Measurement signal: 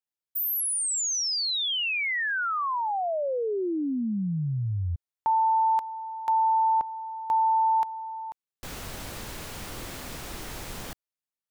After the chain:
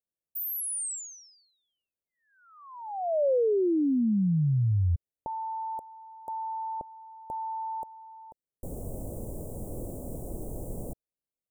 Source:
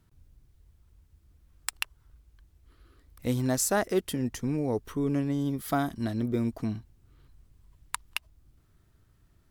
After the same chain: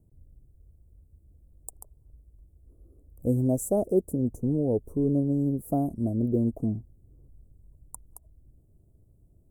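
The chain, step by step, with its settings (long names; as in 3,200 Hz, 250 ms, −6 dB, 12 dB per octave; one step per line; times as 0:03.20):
Chebyshev band-stop filter 590–8,200 Hz, order 3
high shelf with overshoot 2,900 Hz −8 dB, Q 3
level +4 dB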